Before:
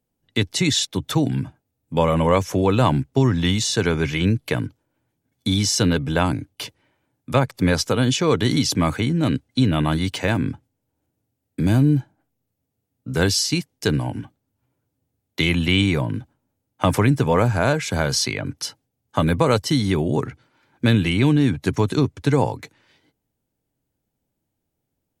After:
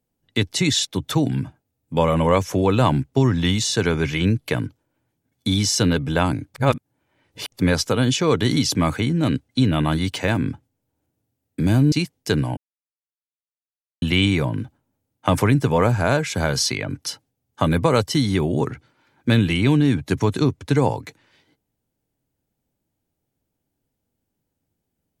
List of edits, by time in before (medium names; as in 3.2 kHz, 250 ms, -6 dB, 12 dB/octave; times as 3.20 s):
6.54–7.52 s: reverse
11.92–13.48 s: delete
14.13–15.58 s: mute